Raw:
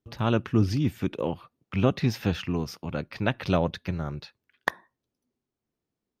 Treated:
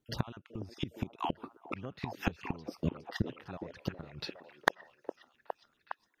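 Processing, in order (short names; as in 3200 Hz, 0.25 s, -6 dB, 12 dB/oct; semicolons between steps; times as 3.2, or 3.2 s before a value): random spectral dropouts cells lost 27%; flipped gate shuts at -22 dBFS, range -25 dB; delay with a stepping band-pass 0.411 s, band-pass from 390 Hz, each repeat 0.7 oct, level -3.5 dB; gain +4 dB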